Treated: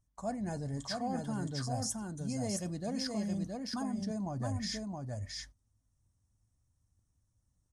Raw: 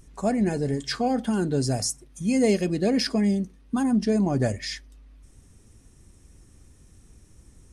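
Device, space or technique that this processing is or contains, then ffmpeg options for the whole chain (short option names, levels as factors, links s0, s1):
compression on the reversed sound: -af "equalizer=f=100:t=o:w=0.67:g=10,equalizer=f=400:t=o:w=0.67:g=-10,equalizer=f=1000:t=o:w=0.67:g=5,equalizer=f=2500:t=o:w=0.67:g=-9,equalizer=f=6300:t=o:w=0.67:g=4,agate=range=0.0708:threshold=0.00891:ratio=16:detection=peak,areverse,acompressor=threshold=0.0316:ratio=6,areverse,equalizer=f=640:t=o:w=0.5:g=4.5,aecho=1:1:669:0.668,volume=0.562"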